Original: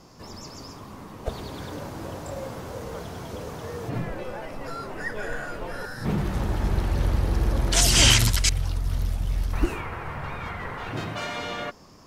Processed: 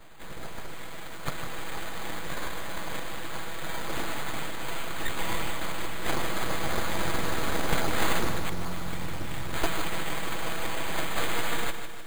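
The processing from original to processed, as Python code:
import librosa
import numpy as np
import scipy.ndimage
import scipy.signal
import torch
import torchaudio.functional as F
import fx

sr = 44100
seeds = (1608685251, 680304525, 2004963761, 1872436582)

y = fx.lower_of_two(x, sr, delay_ms=6.1)
y = fx.weighting(y, sr, curve='ITU-R 468')
y = fx.env_lowpass_down(y, sr, base_hz=990.0, full_db=-16.0)
y = fx.tilt_eq(y, sr, slope=-2.5)
y = np.abs(y)
y = np.repeat(scipy.signal.resample_poly(y, 1, 8), 8)[:len(y)]
y = fx.echo_crushed(y, sr, ms=153, feedback_pct=55, bits=9, wet_db=-9.0)
y = y * librosa.db_to_amplitude(8.0)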